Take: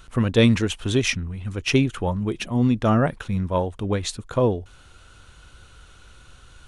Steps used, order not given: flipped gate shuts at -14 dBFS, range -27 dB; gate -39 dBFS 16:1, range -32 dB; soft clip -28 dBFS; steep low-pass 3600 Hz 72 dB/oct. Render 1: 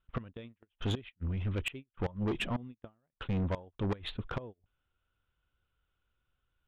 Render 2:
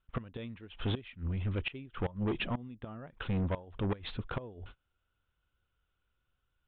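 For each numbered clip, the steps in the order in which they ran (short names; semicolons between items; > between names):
steep low-pass > flipped gate > gate > soft clip; gate > flipped gate > soft clip > steep low-pass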